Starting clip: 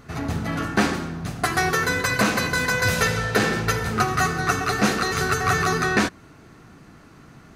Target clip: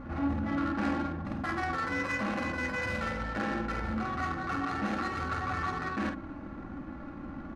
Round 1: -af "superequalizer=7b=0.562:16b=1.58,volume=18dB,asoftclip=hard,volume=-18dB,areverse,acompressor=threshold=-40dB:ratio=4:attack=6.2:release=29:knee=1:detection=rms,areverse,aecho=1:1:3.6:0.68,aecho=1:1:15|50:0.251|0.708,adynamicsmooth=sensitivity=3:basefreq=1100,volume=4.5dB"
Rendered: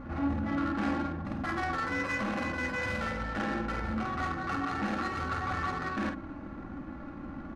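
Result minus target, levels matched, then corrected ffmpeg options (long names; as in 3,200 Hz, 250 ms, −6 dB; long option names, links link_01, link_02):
gain into a clipping stage and back: distortion +34 dB
-af "superequalizer=7b=0.562:16b=1.58,volume=7.5dB,asoftclip=hard,volume=-7.5dB,areverse,acompressor=threshold=-40dB:ratio=4:attack=6.2:release=29:knee=1:detection=rms,areverse,aecho=1:1:3.6:0.68,aecho=1:1:15|50:0.251|0.708,adynamicsmooth=sensitivity=3:basefreq=1100,volume=4.5dB"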